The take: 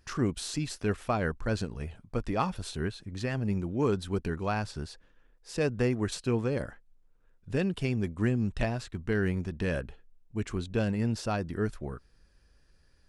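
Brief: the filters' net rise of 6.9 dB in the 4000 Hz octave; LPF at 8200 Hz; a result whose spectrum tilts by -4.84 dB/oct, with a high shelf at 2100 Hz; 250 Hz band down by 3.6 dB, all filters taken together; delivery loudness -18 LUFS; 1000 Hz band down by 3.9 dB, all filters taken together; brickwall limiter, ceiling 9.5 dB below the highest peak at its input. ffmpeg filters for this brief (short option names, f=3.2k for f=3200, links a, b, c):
-af "lowpass=8.2k,equalizer=f=250:t=o:g=-4.5,equalizer=f=1k:t=o:g=-6.5,highshelf=f=2.1k:g=4,equalizer=f=4k:t=o:g=5,volume=18.5dB,alimiter=limit=-7dB:level=0:latency=1"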